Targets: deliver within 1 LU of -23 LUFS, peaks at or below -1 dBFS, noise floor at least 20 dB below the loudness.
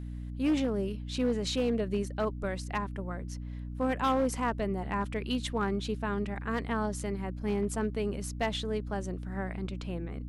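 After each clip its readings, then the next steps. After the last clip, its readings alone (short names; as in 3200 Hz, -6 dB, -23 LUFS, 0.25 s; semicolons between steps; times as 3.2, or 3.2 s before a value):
clipped 0.8%; flat tops at -22.0 dBFS; hum 60 Hz; harmonics up to 300 Hz; hum level -36 dBFS; loudness -32.5 LUFS; peak -22.0 dBFS; loudness target -23.0 LUFS
-> clip repair -22 dBFS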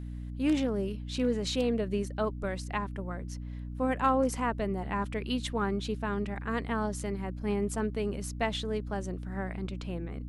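clipped 0.0%; hum 60 Hz; harmonics up to 300 Hz; hum level -36 dBFS
-> notches 60/120/180/240/300 Hz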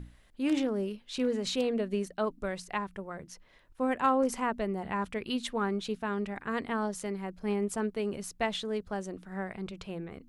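hum none; loudness -33.0 LUFS; peak -14.5 dBFS; loudness target -23.0 LUFS
-> gain +10 dB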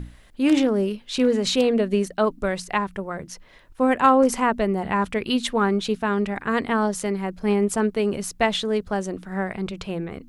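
loudness -23.0 LUFS; peak -4.5 dBFS; noise floor -51 dBFS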